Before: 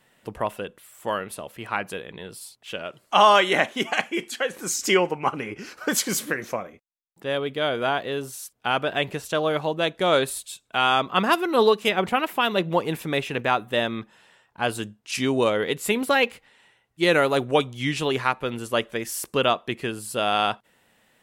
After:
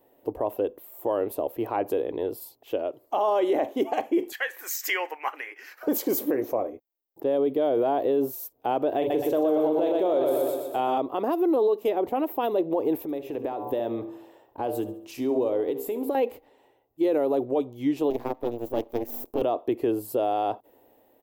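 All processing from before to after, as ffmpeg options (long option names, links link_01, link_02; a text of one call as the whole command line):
ffmpeg -i in.wav -filter_complex "[0:a]asettb=1/sr,asplit=3[link_01][link_02][link_03];[link_01]atrim=end=4.324[link_04];[link_02]atrim=start=4.32:end=5.83,asetpts=PTS-STARTPTS,afade=type=in:duration=0.004:curve=qsin,afade=type=out:start_time=1.506:duration=0.004:curve=qsin,deesser=0.3,highpass=frequency=1800:width_type=q:width=5.2[link_05];[link_03]atrim=start=5.826[link_06];[link_04][link_05]acrossfade=duration=0.004:curve1=hsin:curve2=qsin[link_07];[link_07][link_06]acrossfade=duration=0.004:curve1=qsin:curve2=hsin,asettb=1/sr,asplit=3[link_08][link_09][link_10];[link_08]atrim=end=8.984[link_11];[link_09]atrim=start=8.98:end=10.98,asetpts=PTS-STARTPTS,afade=type=in:duration=0.004:curve=qsin,afade=type=out:start_time=1.996:duration=0.004:curve=qsin,asplit=2[link_12][link_13];[link_13]adelay=39,volume=-9dB[link_14];[link_12][link_14]amix=inputs=2:normalize=0,atrim=end_sample=88200,bandreject=frequency=141.7:width_type=h:width=4,bandreject=frequency=283.4:width_type=h:width=4,bandreject=frequency=425.1:width_type=h:width=4,bandreject=frequency=566.8:width_type=h:width=4,bandreject=frequency=708.5:width_type=h:width=4,bandreject=frequency=850.2:width_type=h:width=4,bandreject=frequency=991.9:width_type=h:width=4,bandreject=frequency=1133.6:width_type=h:width=4,bandreject=frequency=1275.3:width_type=h:width=4,bandreject=frequency=1417:width_type=h:width=4,bandreject=frequency=1558.7:width_type=h:width=4,bandreject=frequency=1700.4:width_type=h:width=4,bandreject=frequency=1842.1:width_type=h:width=4,bandreject=frequency=1983.8:width_type=h:width=4,bandreject=frequency=2125.5:width_type=h:width=4,bandreject=frequency=2267.2:width_type=h:width=4,bandreject=frequency=2408.9:width_type=h:width=4,bandreject=frequency=2550.6:width_type=h:width=4,bandreject=frequency=2692.3:width_type=h:width=4,bandreject=frequency=2834:width_type=h:width=4,bandreject=frequency=2975.7:width_type=h:width=4,bandreject=frequency=3117.4:width_type=h:width=4,bandreject=frequency=3259.1:width_type=h:width=4,bandreject=frequency=3400.8:width_type=h:width=4,bandreject=frequency=3542.5:width_type=h:width=4,bandreject=frequency=3684.2:width_type=h:width=4,bandreject=frequency=3825.9:width_type=h:width=4,bandreject=frequency=3967.6:width_type=h:width=4,bandreject=frequency=4109.3:width_type=h:width=4,bandreject=frequency=4251:width_type=h:width=4,bandreject=frequency=4392.7:width_type=h:width=4,bandreject=frequency=4534.4:width_type=h:width=4,bandreject=frequency=4676.1:width_type=h:width=4,bandreject=frequency=4817.8:width_type=h:width=4,aecho=1:1:120|240|360|480|600|720|840:0.631|0.334|0.177|0.0939|0.0498|0.0264|0.014,atrim=end_sample=88200[link_15];[link_10]atrim=start=10.976[link_16];[link_11][link_15]acrossfade=duration=0.004:curve1=hsin:curve2=qsin[link_17];[link_17][link_16]acrossfade=duration=0.004:curve1=qsin:curve2=hsin,asettb=1/sr,asplit=3[link_18][link_19][link_20];[link_18]atrim=end=13.024[link_21];[link_19]atrim=start=13.02:end=16.15,asetpts=PTS-STARTPTS,afade=type=in:duration=0.004:curve=qsin,afade=type=out:start_time=3.126:duration=0.004:curve=qsin,bandreject=frequency=66.84:width_type=h:width=4,bandreject=frequency=133.68:width_type=h:width=4,bandreject=frequency=200.52:width_type=h:width=4,bandreject=frequency=267.36:width_type=h:width=4,bandreject=frequency=334.2:width_type=h:width=4,bandreject=frequency=401.04:width_type=h:width=4,bandreject=frequency=467.88:width_type=h:width=4,bandreject=frequency=534.72:width_type=h:width=4,bandreject=frequency=601.56:width_type=h:width=4,bandreject=frequency=668.4:width_type=h:width=4,bandreject=frequency=735.24:width_type=h:width=4,bandreject=frequency=802.08:width_type=h:width=4,bandreject=frequency=868.92:width_type=h:width=4,bandreject=frequency=935.76:width_type=h:width=4,bandreject=frequency=1002.6:width_type=h:width=4,bandreject=frequency=1069.44:width_type=h:width=4,bandreject=frequency=1136.28:width_type=h:width=4,bandreject=frequency=1203.12:width_type=h:width=4,acompressor=threshold=-33dB:ratio=6:attack=3.2:release=140:knee=1:detection=peak,aecho=1:1:69|138|207|276:0.178|0.0782|0.0344|0.0151,atrim=end_sample=138033[link_22];[link_20]atrim=start=16.146[link_23];[link_21][link_22]acrossfade=duration=0.004:curve1=hsin:curve2=qsin[link_24];[link_24][link_23]acrossfade=duration=0.004:curve1=qsin:curve2=hsin,asettb=1/sr,asplit=3[link_25][link_26][link_27];[link_25]atrim=end=18.104[link_28];[link_26]atrim=start=18.1:end=19.42,asetpts=PTS-STARTPTS,afade=type=in:duration=0.004:curve=qsin,afade=type=out:start_time=1.316:duration=0.004:curve=qsin,aeval=exprs='max(val(0),0)':channel_layout=same,tremolo=f=240:d=0.824[link_29];[link_27]atrim=start=19.416[link_30];[link_28][link_29]acrossfade=duration=0.004:curve1=hsin:curve2=qsin[link_31];[link_31][link_30]acrossfade=duration=0.004:curve1=qsin:curve2=hsin,firequalizer=gain_entry='entry(110,0);entry(180,-12);entry(280,12);entry(790,7);entry(1400,-11);entry(6600,-10);entry(9500,-12);entry(14000,12)':delay=0.05:min_phase=1,dynaudnorm=framelen=170:gausssize=7:maxgain=6dB,alimiter=limit=-12.5dB:level=0:latency=1:release=54,volume=-3.5dB" out.wav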